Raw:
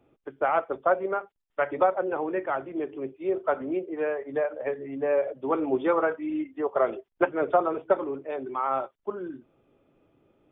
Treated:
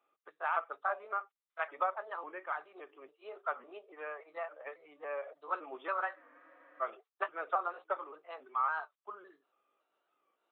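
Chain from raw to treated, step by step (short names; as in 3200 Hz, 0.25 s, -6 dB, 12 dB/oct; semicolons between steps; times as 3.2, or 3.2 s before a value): trilling pitch shifter +2 st, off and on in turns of 0.28 s; HPF 850 Hz 12 dB/oct; bell 1200 Hz +11.5 dB 0.23 oct; spectral freeze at 6.17, 0.65 s; record warp 45 rpm, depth 100 cents; gain -8 dB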